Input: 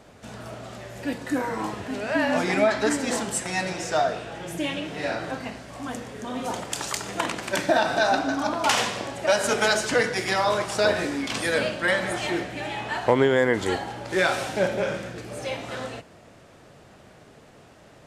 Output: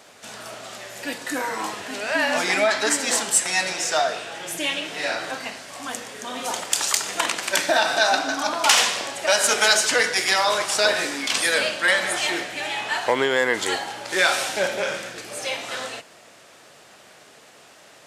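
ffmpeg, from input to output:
ffmpeg -i in.wav -filter_complex "[0:a]asplit=2[link_01][link_02];[link_02]asoftclip=type=tanh:threshold=-15dB,volume=-3.5dB[link_03];[link_01][link_03]amix=inputs=2:normalize=0,highpass=frequency=680:poles=1,highshelf=frequency=2400:gain=7.5,volume=-1dB" out.wav

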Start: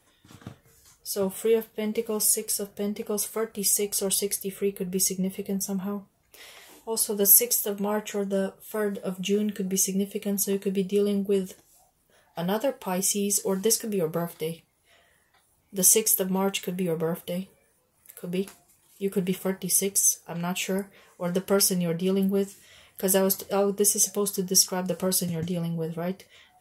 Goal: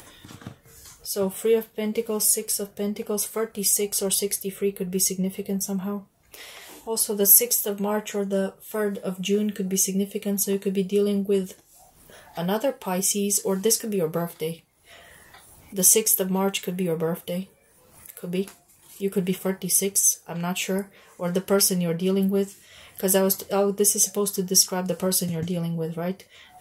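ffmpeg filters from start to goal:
ffmpeg -i in.wav -af "acompressor=mode=upward:threshold=-38dB:ratio=2.5,volume=2dB" out.wav

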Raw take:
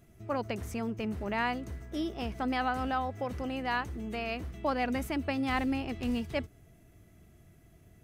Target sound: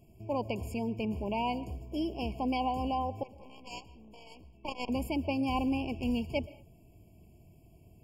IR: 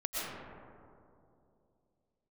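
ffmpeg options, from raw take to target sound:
-filter_complex "[0:a]asettb=1/sr,asplit=3[link_01][link_02][link_03];[link_01]atrim=end=3.234[link_04];[link_02]atrim=start=3.23:end=4.89,asetpts=PTS-STARTPTS,afade=type=in:duration=0.004:curve=qsin,afade=type=out:start_time=1.656:duration=0.004:curve=qsin,aeval=exprs='0.119*(cos(1*acos(clip(val(0)/0.119,-1,1)))-cos(1*PI/2))+0.0473*(cos(3*acos(clip(val(0)/0.119,-1,1)))-cos(3*PI/2))+0.00473*(cos(4*acos(clip(val(0)/0.119,-1,1)))-cos(4*PI/2))':channel_layout=same[link_05];[link_03]atrim=start=4.886[link_06];[link_04][link_05]acrossfade=duration=0.004:curve1=hsin:curve2=qsin[link_07];[link_07][link_06]acrossfade=duration=0.004:curve1=qsin:curve2=hsin,asplit=2[link_08][link_09];[1:a]atrim=start_sample=2205,afade=type=out:start_time=0.28:duration=0.01,atrim=end_sample=12789[link_10];[link_09][link_10]afir=irnorm=-1:irlink=0,volume=-20.5dB[link_11];[link_08][link_11]amix=inputs=2:normalize=0,afftfilt=real='re*eq(mod(floor(b*sr/1024/1100),2),0)':imag='im*eq(mod(floor(b*sr/1024/1100),2),0)':win_size=1024:overlap=0.75"

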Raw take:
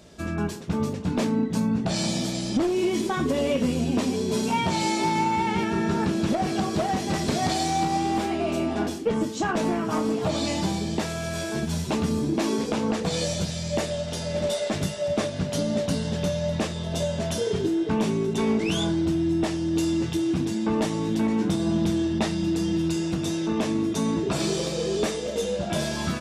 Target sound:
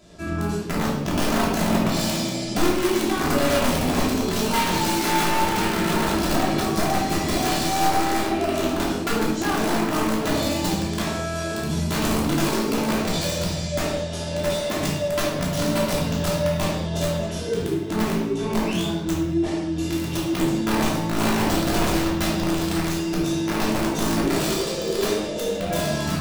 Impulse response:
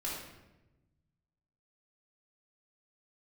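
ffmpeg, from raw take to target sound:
-filter_complex "[0:a]asettb=1/sr,asplit=3[link_01][link_02][link_03];[link_01]atrim=end=17.184[link_04];[link_02]atrim=start=17.18:end=19.9,asetpts=PTS-STARTPTS,afade=type=in:duration=0.004:curve=qsin,afade=type=out:start_time=2.716:duration=0.004:curve=qsin,flanger=delay=19:depth=4.4:speed=1.7[link_05];[link_03]atrim=start=19.896[link_06];[link_04][link_05]acrossfade=duration=0.004:curve1=hsin:curve2=qsin[link_07];[link_07][link_06]acrossfade=duration=0.004:curve1=qsin:curve2=hsin,aeval=exprs='(mod(7.5*val(0)+1,2)-1)/7.5':channel_layout=same[link_08];[1:a]atrim=start_sample=2205,afade=type=out:start_time=0.29:duration=0.01,atrim=end_sample=13230[link_09];[link_08][link_09]afir=irnorm=-1:irlink=0"

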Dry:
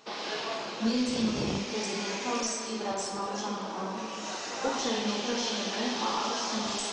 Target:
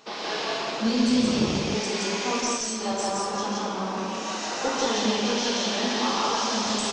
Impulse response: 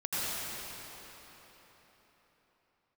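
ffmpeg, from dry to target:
-filter_complex "[0:a]asettb=1/sr,asplit=3[link_01][link_02][link_03];[link_01]atrim=end=2.394[link_04];[link_02]atrim=start=2.39:end=2.82,asetpts=PTS-STARTPTS,afade=type=in:duration=0.004:curve=qsin,afade=type=out:start_time=0.426:duration=0.004:curve=qsin,acrossover=split=210|3000[link_05][link_06][link_07];[link_06]acompressor=threshold=-39dB:ratio=6[link_08];[link_05][link_08][link_07]amix=inputs=3:normalize=0[link_09];[link_03]atrim=start=2.816[link_10];[link_04][link_09]acrossfade=duration=0.004:curve1=hsin:curve2=qsin[link_11];[link_11][link_10]acrossfade=duration=0.004:curve1=qsin:curve2=hsin,aecho=1:1:139.9|172:0.282|0.891,volume=3dB"

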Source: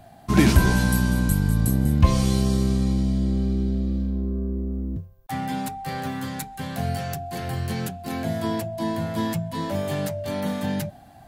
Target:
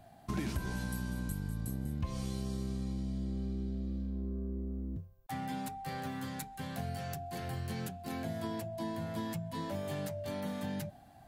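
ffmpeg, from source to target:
ffmpeg -i in.wav -af "acompressor=threshold=-25dB:ratio=4,volume=-9dB" out.wav

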